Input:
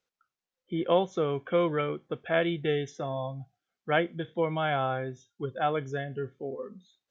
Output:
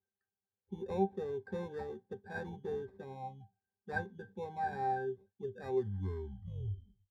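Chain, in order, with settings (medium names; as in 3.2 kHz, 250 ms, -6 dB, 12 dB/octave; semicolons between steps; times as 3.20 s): tape stop on the ending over 1.61 s; sample-and-hold 14×; pitch-class resonator G, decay 0.13 s; trim +3 dB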